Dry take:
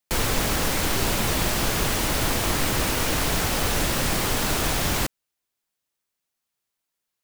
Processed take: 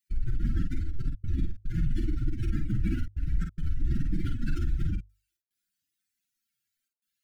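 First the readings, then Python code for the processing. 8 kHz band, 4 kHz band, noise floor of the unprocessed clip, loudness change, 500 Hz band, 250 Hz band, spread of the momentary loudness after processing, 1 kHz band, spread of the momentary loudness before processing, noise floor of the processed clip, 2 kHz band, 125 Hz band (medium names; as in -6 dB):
under -35 dB, -29.5 dB, -83 dBFS, -9.5 dB, -21.5 dB, -6.0 dB, 4 LU, -29.0 dB, 0 LU, -85 dBFS, -22.5 dB, -2.0 dB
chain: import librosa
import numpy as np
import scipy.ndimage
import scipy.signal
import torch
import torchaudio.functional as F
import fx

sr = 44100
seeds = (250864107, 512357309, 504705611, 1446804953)

y = fx.spec_expand(x, sr, power=3.1)
y = fx.step_gate(y, sr, bpm=109, pattern='xxxxxxxx.xx.xx', floor_db=-60.0, edge_ms=4.5)
y = fx.brickwall_bandstop(y, sr, low_hz=360.0, high_hz=1300.0)
y = fx.hum_notches(y, sr, base_hz=50, count=2)
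y = fx.doubler(y, sr, ms=49.0, db=-5.5)
y = y * 10.0 ** (-1.5 / 20.0)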